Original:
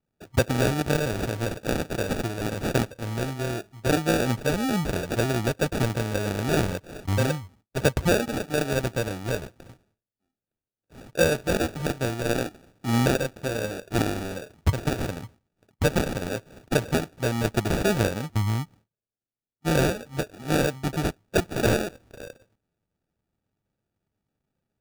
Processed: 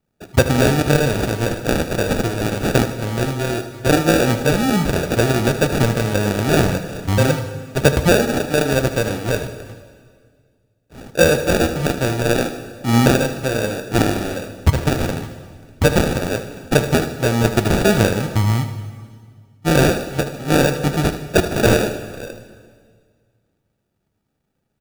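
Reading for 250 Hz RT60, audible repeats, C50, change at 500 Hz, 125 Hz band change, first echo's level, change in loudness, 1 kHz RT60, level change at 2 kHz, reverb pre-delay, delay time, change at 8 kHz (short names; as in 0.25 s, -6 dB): 2.1 s, 2, 9.0 dB, +8.0 dB, +8.0 dB, -12.5 dB, +8.0 dB, 1.8 s, +8.0 dB, 12 ms, 77 ms, +8.0 dB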